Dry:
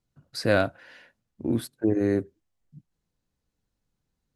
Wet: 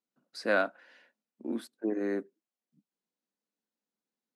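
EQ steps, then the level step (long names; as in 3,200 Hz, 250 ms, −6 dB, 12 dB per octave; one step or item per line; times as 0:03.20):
Chebyshev high-pass filter 210 Hz, order 4
low-pass filter 9,600 Hz 12 dB per octave
dynamic equaliser 1,300 Hz, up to +8 dB, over −39 dBFS, Q 0.79
−8.0 dB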